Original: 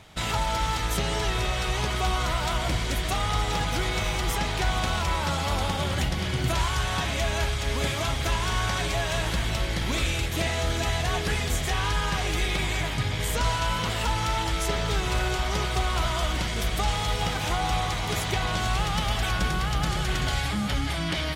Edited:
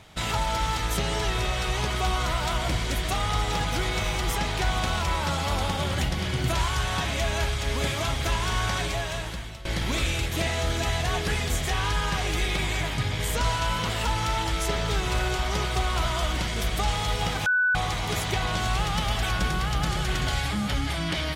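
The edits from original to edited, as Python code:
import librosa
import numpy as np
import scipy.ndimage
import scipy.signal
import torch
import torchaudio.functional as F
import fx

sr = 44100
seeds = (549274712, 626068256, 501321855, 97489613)

y = fx.edit(x, sr, fx.fade_out_to(start_s=8.76, length_s=0.89, floor_db=-18.0),
    fx.bleep(start_s=17.46, length_s=0.29, hz=1490.0, db=-19.0), tone=tone)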